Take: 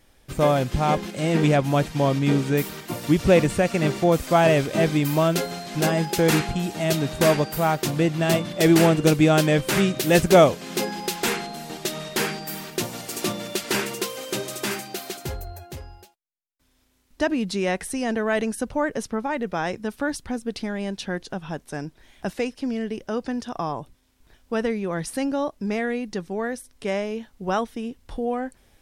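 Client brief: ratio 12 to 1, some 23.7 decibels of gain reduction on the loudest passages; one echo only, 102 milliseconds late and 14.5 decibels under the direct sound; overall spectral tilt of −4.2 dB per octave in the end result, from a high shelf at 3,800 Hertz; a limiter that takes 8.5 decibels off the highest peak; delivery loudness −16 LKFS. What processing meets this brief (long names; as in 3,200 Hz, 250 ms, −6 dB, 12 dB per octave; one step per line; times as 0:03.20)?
high-shelf EQ 3,800 Hz +6.5 dB
downward compressor 12 to 1, threshold −33 dBFS
brickwall limiter −27.5 dBFS
single-tap delay 102 ms −14.5 dB
level +22 dB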